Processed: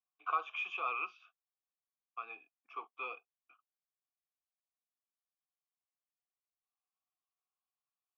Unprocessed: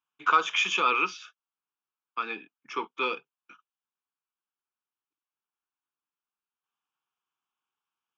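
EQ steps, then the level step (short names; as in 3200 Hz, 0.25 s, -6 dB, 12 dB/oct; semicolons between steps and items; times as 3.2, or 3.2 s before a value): vowel filter a; HPF 220 Hz; air absorption 67 m; -1.5 dB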